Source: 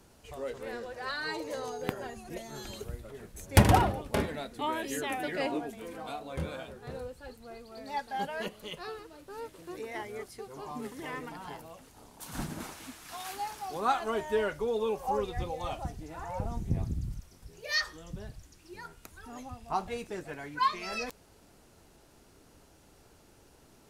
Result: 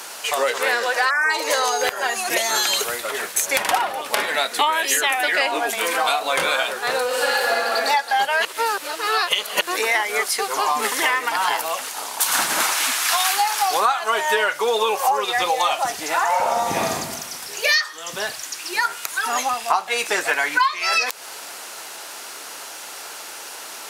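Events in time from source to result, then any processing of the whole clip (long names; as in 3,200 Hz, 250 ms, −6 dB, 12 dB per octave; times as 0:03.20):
0:01.10–0:01.31: time-frequency box erased 2,500–5,000 Hz
0:07.06–0:07.51: thrown reverb, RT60 2.5 s, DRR −9 dB
0:08.45–0:09.61: reverse
0:16.27–0:16.93: thrown reverb, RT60 1.1 s, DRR −1 dB
whole clip: high-pass filter 1,000 Hz 12 dB per octave; downward compressor 12 to 1, threshold −46 dBFS; boost into a limiter +31 dB; level −1 dB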